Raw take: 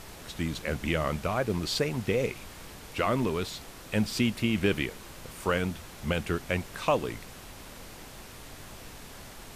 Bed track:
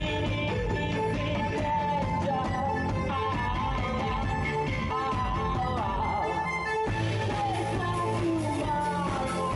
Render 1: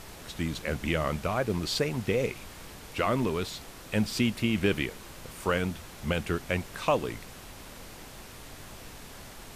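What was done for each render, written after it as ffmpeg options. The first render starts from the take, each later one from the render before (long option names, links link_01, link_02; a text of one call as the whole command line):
ffmpeg -i in.wav -af anull out.wav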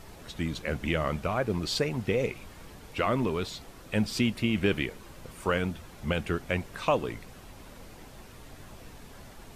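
ffmpeg -i in.wav -af "afftdn=noise_reduction=7:noise_floor=-47" out.wav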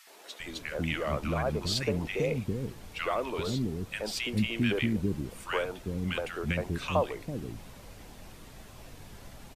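ffmpeg -i in.wav -filter_complex "[0:a]acrossover=split=350|1300[link_01][link_02][link_03];[link_02]adelay=70[link_04];[link_01]adelay=400[link_05];[link_05][link_04][link_03]amix=inputs=3:normalize=0" out.wav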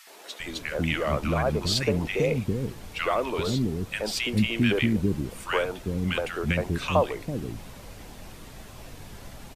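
ffmpeg -i in.wav -af "volume=5dB" out.wav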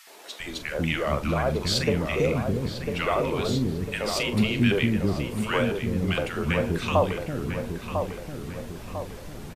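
ffmpeg -i in.wav -filter_complex "[0:a]asplit=2[link_01][link_02];[link_02]adelay=42,volume=-12dB[link_03];[link_01][link_03]amix=inputs=2:normalize=0,asplit=2[link_04][link_05];[link_05]adelay=999,lowpass=frequency=1900:poles=1,volume=-6dB,asplit=2[link_06][link_07];[link_07]adelay=999,lowpass=frequency=1900:poles=1,volume=0.51,asplit=2[link_08][link_09];[link_09]adelay=999,lowpass=frequency=1900:poles=1,volume=0.51,asplit=2[link_10][link_11];[link_11]adelay=999,lowpass=frequency=1900:poles=1,volume=0.51,asplit=2[link_12][link_13];[link_13]adelay=999,lowpass=frequency=1900:poles=1,volume=0.51,asplit=2[link_14][link_15];[link_15]adelay=999,lowpass=frequency=1900:poles=1,volume=0.51[link_16];[link_04][link_06][link_08][link_10][link_12][link_14][link_16]amix=inputs=7:normalize=0" out.wav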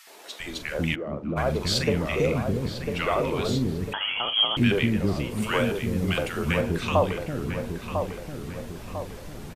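ffmpeg -i in.wav -filter_complex "[0:a]asplit=3[link_01][link_02][link_03];[link_01]afade=type=out:start_time=0.94:duration=0.02[link_04];[link_02]bandpass=frequency=270:width_type=q:width=1.1,afade=type=in:start_time=0.94:duration=0.02,afade=type=out:start_time=1.36:duration=0.02[link_05];[link_03]afade=type=in:start_time=1.36:duration=0.02[link_06];[link_04][link_05][link_06]amix=inputs=3:normalize=0,asettb=1/sr,asplit=3[link_07][link_08][link_09];[link_07]atrim=end=3.934[link_10];[link_08]atrim=start=3.93:end=4.57,asetpts=PTS-STARTPTS,afade=type=in:duration=0.004:curve=qsin,afade=type=out:start_time=0.636:duration=0.004:curve=qsin,lowpass=frequency=2900:width_type=q:width=0.5098,lowpass=frequency=2900:width_type=q:width=0.6013,lowpass=frequency=2900:width_type=q:width=0.9,lowpass=frequency=2900:width_type=q:width=2.563,afreqshift=-3400[link_11];[link_09]atrim=start=4.566[link_12];[link_10][link_11]acrossfade=duration=0.004:curve1=hsin:curve2=qsin[link_13];[link_13][link_12]acrossfade=duration=0.004:curve1=qsin:curve2=hsin,asettb=1/sr,asplit=3[link_14][link_15][link_16];[link_14]atrim=end=5.424[link_17];[link_15]atrim=start=5.42:end=6.61,asetpts=PTS-STARTPTS,afade=type=in:duration=0.004:curve=qsin,afade=type=out:start_time=1.186:duration=0.004:curve=qsin,highshelf=frequency=6300:gain=6[link_18];[link_16]atrim=start=6.606[link_19];[link_17][link_18]acrossfade=duration=0.004:curve1=hsin:curve2=qsin[link_20];[link_20][link_19]acrossfade=duration=0.004:curve1=qsin:curve2=hsin" out.wav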